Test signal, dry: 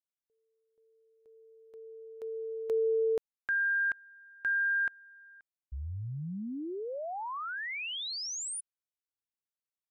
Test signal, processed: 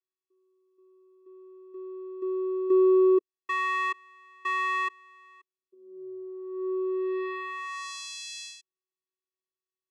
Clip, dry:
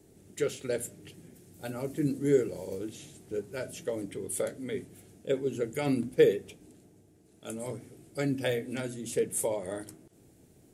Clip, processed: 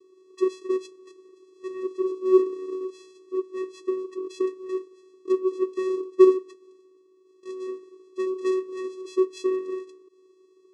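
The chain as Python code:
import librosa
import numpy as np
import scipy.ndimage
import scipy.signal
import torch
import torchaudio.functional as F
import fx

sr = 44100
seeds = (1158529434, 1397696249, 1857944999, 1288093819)

y = fx.vocoder(x, sr, bands=4, carrier='square', carrier_hz=374.0)
y = fx.high_shelf(y, sr, hz=4800.0, db=5.0)
y = y * librosa.db_to_amplitude(6.5)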